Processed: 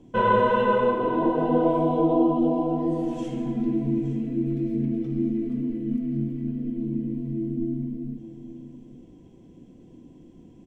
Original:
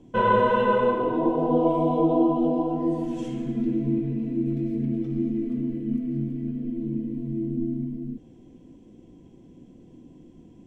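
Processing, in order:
single-tap delay 868 ms −13.5 dB

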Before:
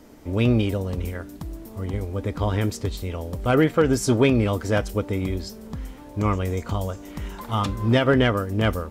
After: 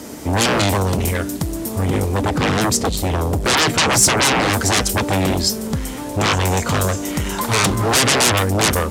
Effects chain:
0:02.21–0:04.50: tilt shelving filter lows +4 dB, about 700 Hz
sine wavefolder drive 19 dB, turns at −5.5 dBFS
high-pass filter 78 Hz
parametric band 8,700 Hz +9.5 dB 1.7 octaves
level −8 dB

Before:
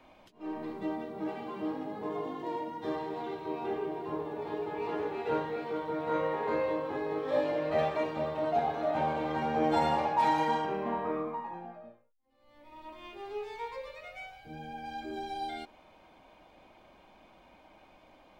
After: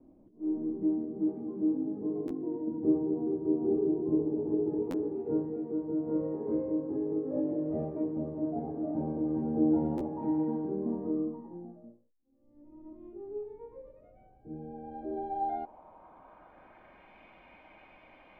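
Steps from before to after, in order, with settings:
low-pass filter sweep 310 Hz → 2,300 Hz, 0:14.24–0:17.19
0:02.67–0:04.83: tilt shelving filter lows +5 dB, about 1,500 Hz
buffer that repeats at 0:02.27/0:04.90/0:09.97/0:12.19, samples 512, times 2

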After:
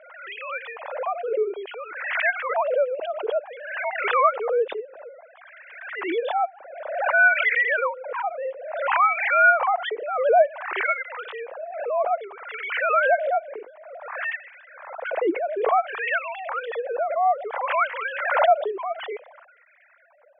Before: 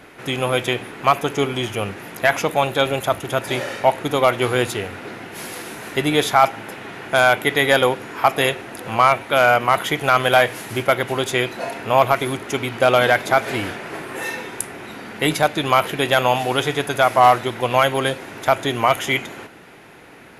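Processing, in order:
three sine waves on the formant tracks
auto-filter band-pass sine 0.57 Hz 340–2,000 Hz
background raised ahead of every attack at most 49 dB per second

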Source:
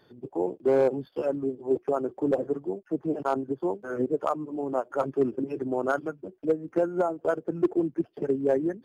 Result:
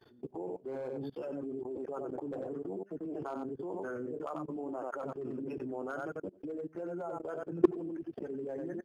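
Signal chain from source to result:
single-tap delay 91 ms −8.5 dB
flanger 0.62 Hz, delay 2.3 ms, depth 6.6 ms, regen −47%
output level in coarse steps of 22 dB
level +5.5 dB

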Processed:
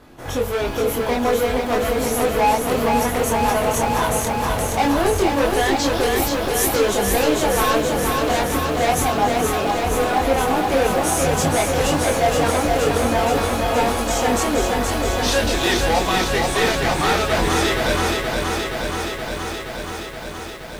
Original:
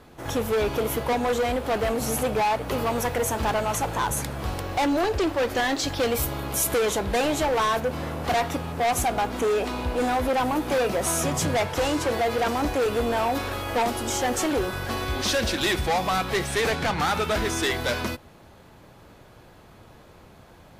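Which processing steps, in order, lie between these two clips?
multi-voice chorus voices 4, 0.13 Hz, delay 23 ms, depth 3.3 ms
feedback echo at a low word length 473 ms, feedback 80%, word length 9 bits, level −4 dB
level +6 dB

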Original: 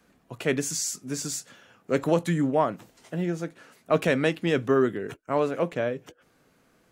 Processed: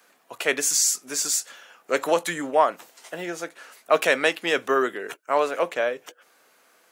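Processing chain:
high-pass filter 620 Hz 12 dB per octave
high-shelf EQ 8,900 Hz +5.5 dB
level +7 dB

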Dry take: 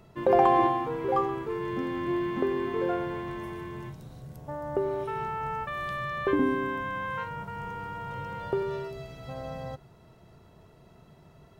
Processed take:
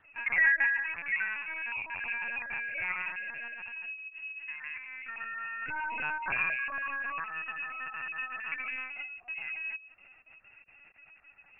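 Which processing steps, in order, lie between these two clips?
time-frequency cells dropped at random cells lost 21%
dynamic equaliser 150 Hz, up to +6 dB, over −50 dBFS, Q 1.8
0:03.46–0:05.63: downward compressor 12 to 1, threshold −34 dBFS, peak gain reduction 12 dB
bit reduction 10 bits
parametric band 350 Hz −11 dB 1.2 octaves
voice inversion scrambler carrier 2,700 Hz
high-pass filter 100 Hz 24 dB per octave
feedback echo with a low-pass in the loop 61 ms, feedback 47%, low-pass 1,100 Hz, level −17.5 dB
linear-prediction vocoder at 8 kHz pitch kept

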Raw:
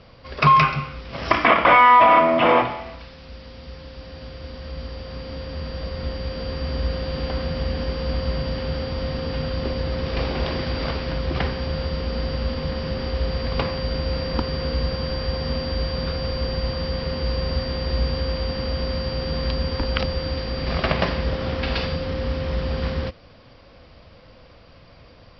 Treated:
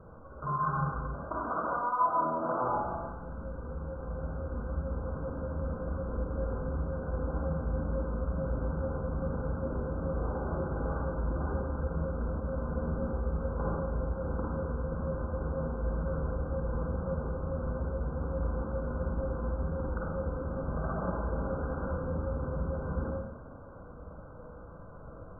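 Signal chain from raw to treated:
notch filter 700 Hz, Q 17
reversed playback
downward compressor 5 to 1, threshold −31 dBFS, peak gain reduction 19 dB
reversed playback
tape wow and flutter 45 cents
linear-phase brick-wall low-pass 1,600 Hz
four-comb reverb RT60 0.96 s, DRR −4.5 dB
level −4 dB

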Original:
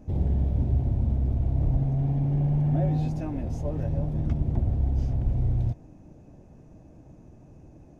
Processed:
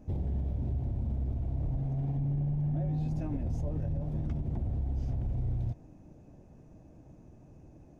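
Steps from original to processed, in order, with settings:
0:02.17–0:04.00: low-shelf EQ 220 Hz +7.5 dB
brickwall limiter −21.5 dBFS, peak gain reduction 11 dB
level −4 dB

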